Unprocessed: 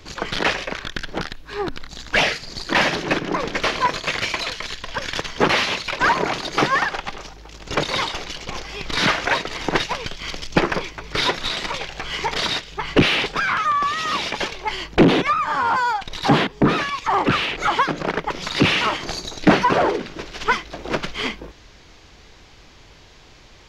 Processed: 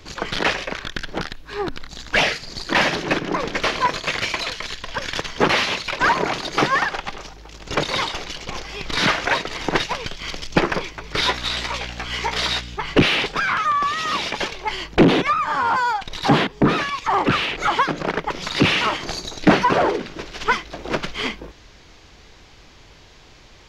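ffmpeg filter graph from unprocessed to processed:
-filter_complex "[0:a]asettb=1/sr,asplit=3[a][b][c];[a]atrim=end=11.214[d];[b]atrim=start=11.21:end=12.76,asetpts=PTS-STARTPTS,afade=t=in:d=0.004:c=qsin,afade=t=out:st=1.546:d=0.004:c=qsin,lowshelf=f=390:g=-7.5,asplit=2[e][f];[f]adelay=16,volume=-6.5dB[g];[e][g]amix=inputs=2:normalize=0,atrim=end_sample=68355,aeval=exprs='val(0)+0.02*(sin(2*PI*60*n/s)+sin(2*PI*2*60*n/s)/2+sin(2*PI*3*60*n/s)/3+sin(2*PI*4*60*n/s)/4+sin(2*PI*5*60*n/s)/5)':c=same[h];[c]atrim=start=12.756[i];[d][h]acrossfade=d=0.004:c1=hsin:c2=qsin[j];[j][i]acrossfade=d=0.004:c1=qsin:c2=hsin"

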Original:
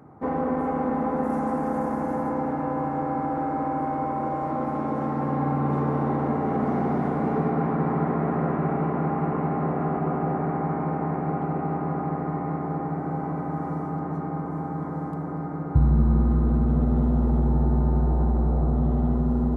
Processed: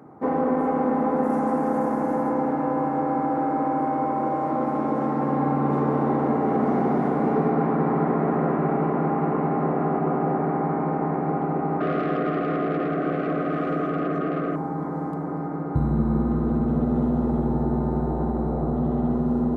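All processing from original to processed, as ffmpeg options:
-filter_complex "[0:a]asettb=1/sr,asplit=3[a][b][c];[a]atrim=end=11.804[d];[b]atrim=start=11.8:end=14.56,asetpts=PTS-STARTPTS,afade=t=in:d=0.004:c=qsin,afade=t=out:st=2.756:d=0.004:c=qsin,asplit=2[e][f];[f]highpass=f=720:p=1,volume=18dB,asoftclip=type=tanh:threshold=-15.5dB[g];[e][g]amix=inputs=2:normalize=0,lowpass=f=2k:p=1,volume=-6dB,asuperstop=centerf=900:order=8:qfactor=2.4[h];[c]atrim=start=14.556[i];[d][h]acrossfade=d=0.004:c1=hsin:c2=qsin[j];[j][i]acrossfade=d=0.004:c1=qsin:c2=hsin,highpass=f=200:p=1,equalizer=f=330:w=0.65:g=4,volume=1.5dB"

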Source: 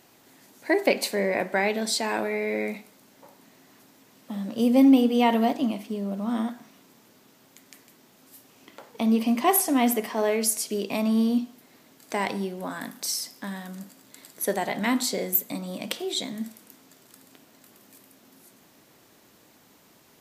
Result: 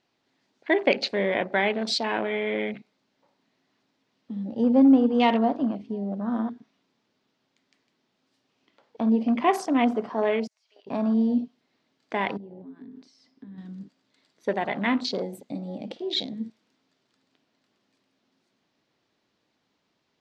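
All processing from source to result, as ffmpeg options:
-filter_complex "[0:a]asettb=1/sr,asplit=3[a][b][c];[a]atrim=end=10.474[d];[b]atrim=start=10.47:end=10.87,asetpts=PTS-STARTPTS,afade=t=in:d=0.004:c=qsin,afade=t=out:st=0.396:d=0.004:c=qsin,highpass=f=790:w=0.5412,highpass=f=790:w=1.3066,acompressor=threshold=-37dB:ratio=20:attack=3.2:release=140:knee=1:detection=peak,equalizer=f=12k:t=o:w=2.3:g=-14[e];[c]atrim=start=10.866[f];[d][e]acrossfade=d=0.004:c1=hsin:c2=qsin[g];[g][f]acrossfade=d=0.004:c1=qsin:c2=hsin,asettb=1/sr,asplit=3[h][i][j];[h]atrim=end=12.374[k];[i]atrim=start=12.37:end=13.58,asetpts=PTS-STARTPTS,afade=t=in:d=0.004:c=qsin,afade=t=out:st=1.206:d=0.004:c=qsin,lowpass=f=2k:p=1,equalizer=f=260:w=6.2:g=11.5,acompressor=threshold=-39dB:ratio=6:attack=3.2:release=140:knee=1:detection=peak[l];[j]atrim=start=13.576[m];[k][l]acrossfade=d=0.004:c1=hsin:c2=qsin[n];[n][m]acrossfade=d=0.004:c1=qsin:c2=hsin,afwtdn=0.02,lowpass=f=4.6k:w=0.5412,lowpass=f=4.6k:w=1.3066,aemphasis=mode=production:type=50kf"

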